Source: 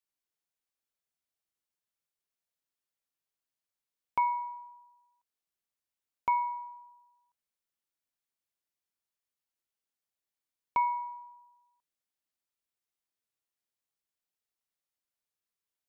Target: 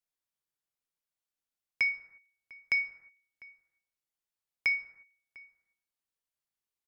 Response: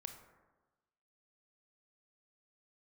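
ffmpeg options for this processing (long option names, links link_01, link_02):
-filter_complex "[0:a]asetrate=101871,aresample=44100,asplit=2[link_01][link_02];[link_02]adelay=699.7,volume=-20dB,highshelf=frequency=4000:gain=-15.7[link_03];[link_01][link_03]amix=inputs=2:normalize=0,asplit=2[link_04][link_05];[1:a]atrim=start_sample=2205,afade=type=out:start_time=0.42:duration=0.01,atrim=end_sample=18963,lowshelf=frequency=63:gain=7.5[link_06];[link_05][link_06]afir=irnorm=-1:irlink=0,volume=7dB[link_07];[link_04][link_07]amix=inputs=2:normalize=0,volume=-6dB"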